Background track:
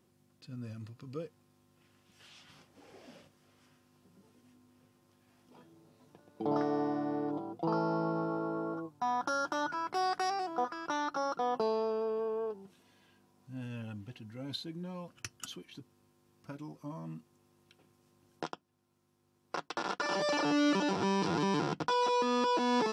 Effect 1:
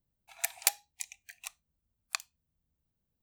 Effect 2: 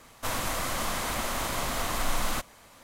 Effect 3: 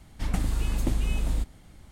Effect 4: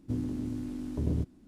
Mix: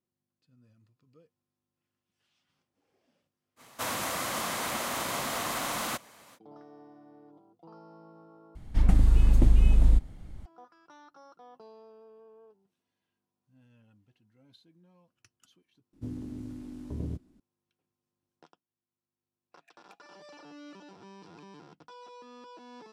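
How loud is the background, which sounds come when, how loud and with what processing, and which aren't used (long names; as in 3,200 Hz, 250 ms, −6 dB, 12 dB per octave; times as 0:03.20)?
background track −20 dB
0:03.56: mix in 2 −1 dB, fades 0.05 s + high-pass filter 140 Hz
0:08.55: overwrite with 3 −2 dB + spectral tilt −2 dB per octave
0:15.93: mix in 4 −5.5 dB
0:19.24: mix in 1 −15.5 dB + formant filter swept between two vowels a-e 1.4 Hz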